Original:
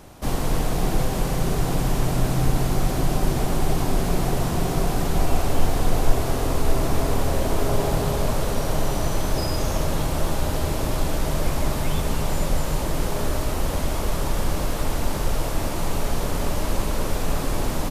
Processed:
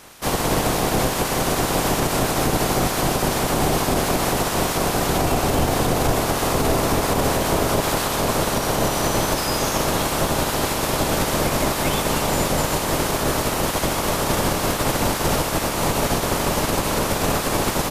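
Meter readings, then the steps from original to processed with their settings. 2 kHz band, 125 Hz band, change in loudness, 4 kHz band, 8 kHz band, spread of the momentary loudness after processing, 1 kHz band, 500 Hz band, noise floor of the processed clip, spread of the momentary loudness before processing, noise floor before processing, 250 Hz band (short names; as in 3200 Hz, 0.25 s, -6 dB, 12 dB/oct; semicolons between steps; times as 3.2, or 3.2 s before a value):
+8.5 dB, -0.5 dB, +5.0 dB, +8.5 dB, +8.5 dB, 1 LU, +7.5 dB, +5.5 dB, -25 dBFS, 3 LU, -26 dBFS, +4.0 dB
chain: spectral limiter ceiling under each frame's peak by 21 dB; limiter -9.5 dBFS, peak gain reduction 9.5 dB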